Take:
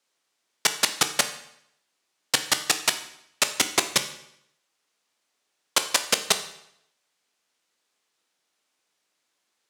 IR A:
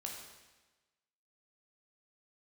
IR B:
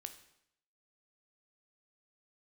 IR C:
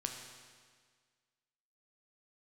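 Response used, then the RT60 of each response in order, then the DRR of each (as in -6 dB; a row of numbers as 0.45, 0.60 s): B; 1.2, 0.75, 1.7 s; -0.5, 8.0, 2.5 dB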